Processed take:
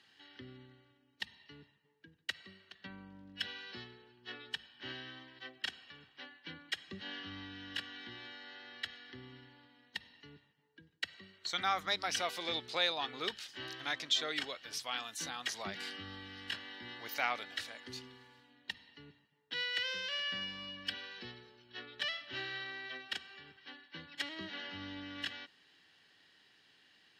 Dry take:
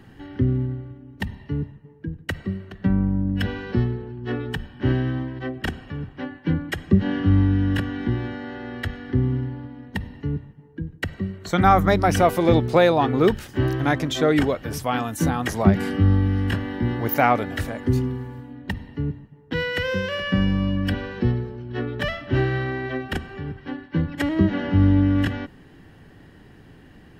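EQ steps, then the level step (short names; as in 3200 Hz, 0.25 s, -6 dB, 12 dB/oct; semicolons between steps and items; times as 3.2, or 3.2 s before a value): band-pass 4100 Hz, Q 2; +1.0 dB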